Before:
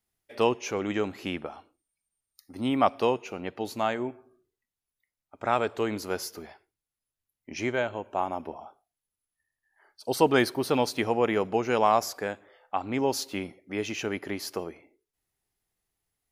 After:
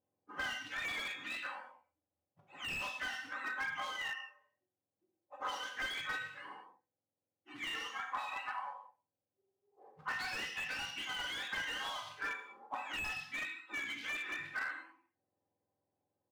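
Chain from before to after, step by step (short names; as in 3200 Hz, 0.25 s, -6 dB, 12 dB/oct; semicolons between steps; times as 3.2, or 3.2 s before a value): spectrum mirrored in octaves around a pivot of 840 Hz; comb 3.9 ms, depth 51%; compressor 1.5:1, threshold -47 dBFS, peak gain reduction 10.5 dB; short-mantissa float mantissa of 2-bit; auto-wah 640–3900 Hz, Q 2.3, up, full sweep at -32 dBFS; non-linear reverb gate 0.24 s falling, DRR -0.5 dB; slew limiter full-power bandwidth 16 Hz; gain +6 dB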